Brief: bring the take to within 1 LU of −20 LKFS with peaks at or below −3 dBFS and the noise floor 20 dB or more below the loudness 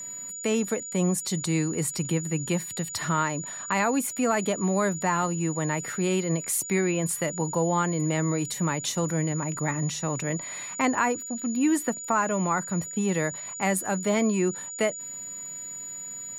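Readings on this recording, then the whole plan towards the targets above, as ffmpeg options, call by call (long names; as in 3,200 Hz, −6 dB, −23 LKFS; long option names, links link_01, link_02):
interfering tone 6,900 Hz; level of the tone −35 dBFS; integrated loudness −27.0 LKFS; sample peak −11.0 dBFS; target loudness −20.0 LKFS
→ -af "bandreject=frequency=6900:width=30"
-af "volume=7dB"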